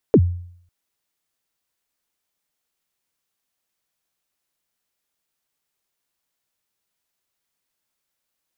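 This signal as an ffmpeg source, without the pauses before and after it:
ffmpeg -f lavfi -i "aevalsrc='0.501*pow(10,-3*t/0.62)*sin(2*PI*(520*0.059/log(88/520)*(exp(log(88/520)*min(t,0.059)/0.059)-1)+88*max(t-0.059,0)))':duration=0.55:sample_rate=44100" out.wav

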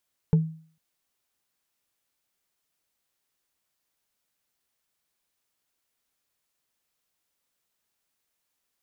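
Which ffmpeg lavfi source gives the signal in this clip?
ffmpeg -f lavfi -i "aevalsrc='0.224*pow(10,-3*t/0.46)*sin(2*PI*160*t)+0.0596*pow(10,-3*t/0.136)*sin(2*PI*441.1*t)+0.0158*pow(10,-3*t/0.061)*sin(2*PI*864.6*t)+0.00422*pow(10,-3*t/0.033)*sin(2*PI*1429.3*t)+0.00112*pow(10,-3*t/0.021)*sin(2*PI*2134.4*t)':duration=0.45:sample_rate=44100" out.wav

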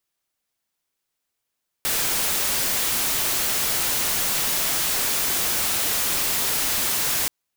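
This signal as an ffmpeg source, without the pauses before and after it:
ffmpeg -f lavfi -i "anoisesrc=color=white:amplitude=0.123:duration=5.43:sample_rate=44100:seed=1" out.wav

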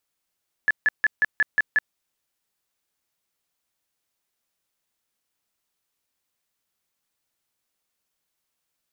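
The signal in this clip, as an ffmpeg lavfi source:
ffmpeg -f lavfi -i "aevalsrc='0.178*sin(2*PI*1720*mod(t,0.18))*lt(mod(t,0.18),46/1720)':duration=1.26:sample_rate=44100" out.wav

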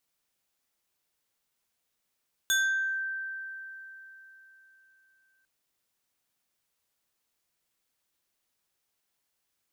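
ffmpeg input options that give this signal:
ffmpeg -f lavfi -i "aevalsrc='0.0841*pow(10,-3*t/3.75)*sin(2*PI*1560*t+1.6*pow(10,-3*t/0.61)*sin(2*PI*3.25*1560*t))':duration=2.95:sample_rate=44100" out.wav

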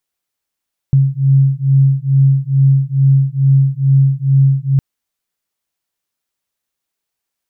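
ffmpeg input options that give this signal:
ffmpeg -f lavfi -i "aevalsrc='0.266*(sin(2*PI*135*t)+sin(2*PI*137.3*t))':duration=3.86:sample_rate=44100" out.wav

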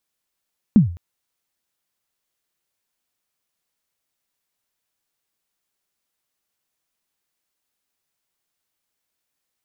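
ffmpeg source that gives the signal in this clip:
ffmpeg -f lavfi -i "aevalsrc='0.596*pow(10,-3*t/0.41)*sin(2*PI*(240*0.128/log(86/240)*(exp(log(86/240)*min(t,0.128)/0.128)-1)+86*max(t-0.128,0)))':duration=0.21:sample_rate=44100" out.wav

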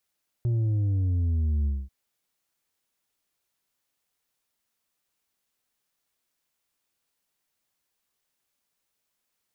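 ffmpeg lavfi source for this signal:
ffmpeg -f lavfi -i "aevalsrc='0.075*clip((1.44-t)/0.23,0,1)*tanh(1.78*sin(2*PI*120*1.44/log(65/120)*(exp(log(65/120)*t/1.44)-1)))/tanh(1.78)':duration=1.44:sample_rate=44100" out.wav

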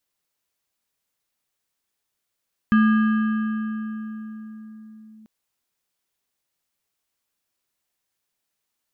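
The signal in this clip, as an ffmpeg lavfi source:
ffmpeg -f lavfi -i "aevalsrc='0.251*pow(10,-3*t/4.64)*sin(2*PI*218*t+0.5*clip(1-t/2.51,0,1)*sin(2*PI*6.55*218*t))':duration=2.54:sample_rate=44100" out.wav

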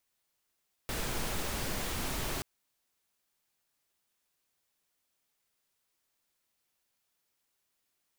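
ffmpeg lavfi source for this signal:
ffmpeg -f lavfi -i "anoisesrc=color=pink:amplitude=0.0966:duration=1.53:sample_rate=44100:seed=1" out.wav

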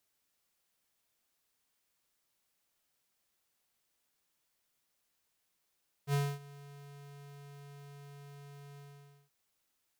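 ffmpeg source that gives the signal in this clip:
ffmpeg -f lavfi -i "aevalsrc='0.0355*(2*lt(mod(142*t,1),0.5)-1)':duration=3.226:sample_rate=44100,afade=type=in:duration=0.066,afade=type=out:start_time=0.066:duration=0.25:silence=0.075,afade=type=out:start_time=2.71:duration=0.516" out.wav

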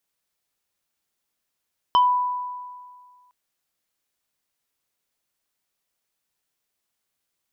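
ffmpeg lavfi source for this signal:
ffmpeg -f lavfi -i "aevalsrc='0.251*pow(10,-3*t/1.85)*sin(2*PI*991*t+0.74*pow(10,-3*t/0.2)*sin(2*PI*2.09*991*t))':duration=1.36:sample_rate=44100" out.wav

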